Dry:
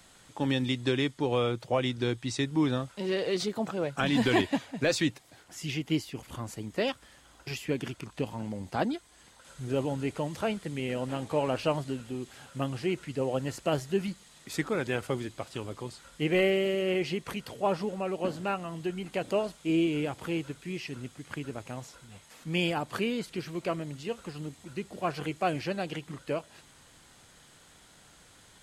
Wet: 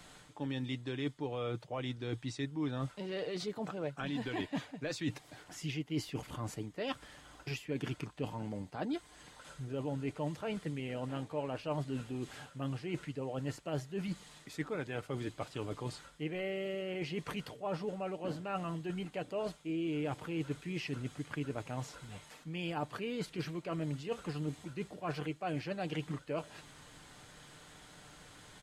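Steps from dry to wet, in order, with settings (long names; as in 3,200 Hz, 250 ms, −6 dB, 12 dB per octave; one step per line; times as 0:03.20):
reversed playback
downward compressor 10 to 1, threshold −37 dBFS, peak gain reduction 17 dB
reversed playback
high-shelf EQ 5,200 Hz −7 dB
comb filter 6.7 ms, depth 32%
level +2.5 dB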